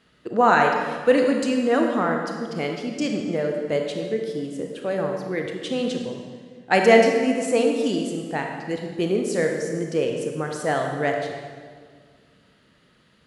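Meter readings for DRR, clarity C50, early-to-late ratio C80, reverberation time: 2.0 dB, 3.0 dB, 4.5 dB, 1.9 s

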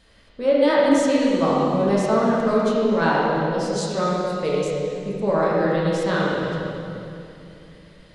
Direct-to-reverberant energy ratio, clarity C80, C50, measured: −6.5 dB, −1.5 dB, −3.0 dB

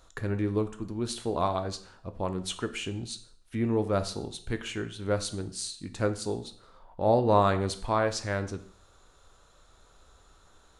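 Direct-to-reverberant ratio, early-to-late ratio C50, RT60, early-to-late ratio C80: 9.0 dB, 13.5 dB, 0.60 s, 17.0 dB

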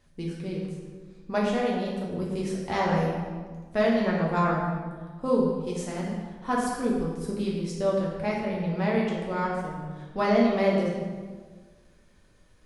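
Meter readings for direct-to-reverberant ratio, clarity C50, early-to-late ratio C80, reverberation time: −4.5 dB, 1.0 dB, 3.0 dB, 1.5 s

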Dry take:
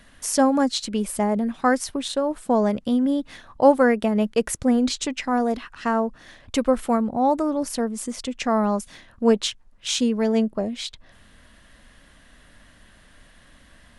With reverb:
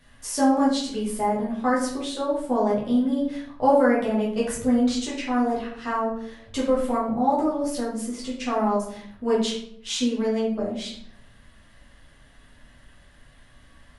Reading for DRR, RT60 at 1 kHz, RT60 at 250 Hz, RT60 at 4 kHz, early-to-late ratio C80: −7.0 dB, 0.65 s, 0.85 s, 0.45 s, 8.0 dB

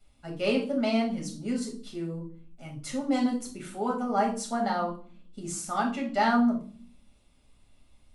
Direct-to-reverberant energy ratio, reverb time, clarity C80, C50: −1.5 dB, 0.45 s, 14.0 dB, 9.0 dB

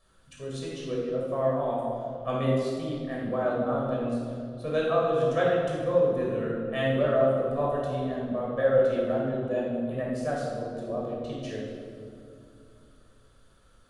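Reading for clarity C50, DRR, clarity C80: −1.0 dB, −5.0 dB, 1.5 dB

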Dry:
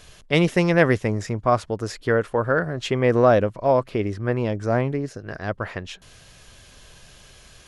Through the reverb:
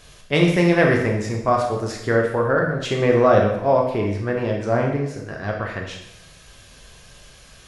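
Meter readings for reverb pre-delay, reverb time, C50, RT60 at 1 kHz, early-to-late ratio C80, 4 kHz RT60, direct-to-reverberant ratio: 6 ms, 0.85 s, 4.5 dB, 0.80 s, 7.5 dB, 0.75 s, −0.5 dB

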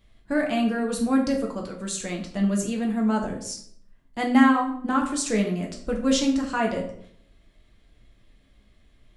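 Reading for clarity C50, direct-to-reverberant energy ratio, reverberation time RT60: 8.0 dB, 0.0 dB, 0.65 s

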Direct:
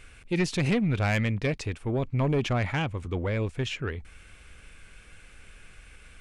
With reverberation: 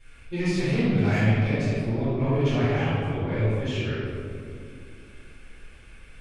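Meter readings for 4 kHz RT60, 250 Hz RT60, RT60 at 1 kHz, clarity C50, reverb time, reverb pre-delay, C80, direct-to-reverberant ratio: 1.2 s, 3.4 s, 2.0 s, −5.0 dB, 2.4 s, 3 ms, −2.0 dB, −15.5 dB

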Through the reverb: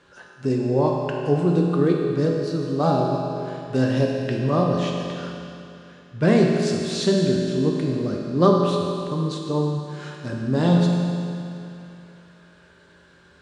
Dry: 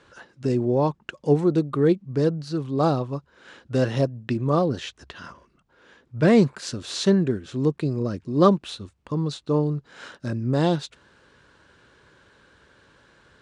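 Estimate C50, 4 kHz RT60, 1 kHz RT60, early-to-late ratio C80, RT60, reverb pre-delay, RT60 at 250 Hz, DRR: 1.0 dB, 2.6 s, 2.7 s, 2.0 dB, 2.7 s, 5 ms, 2.7 s, −1.0 dB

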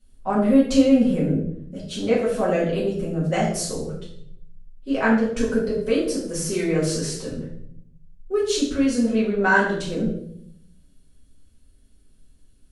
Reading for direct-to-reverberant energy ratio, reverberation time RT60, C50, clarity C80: −8.0 dB, 0.70 s, 4.0 dB, 8.0 dB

